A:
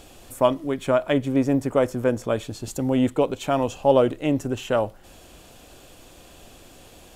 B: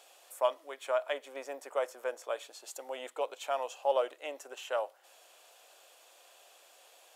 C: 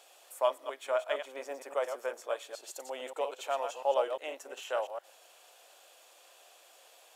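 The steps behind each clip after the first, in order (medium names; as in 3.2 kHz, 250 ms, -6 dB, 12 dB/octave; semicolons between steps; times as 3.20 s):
inverse Chebyshev high-pass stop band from 160 Hz, stop band 60 dB; trim -8.5 dB
chunks repeated in reverse 116 ms, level -7 dB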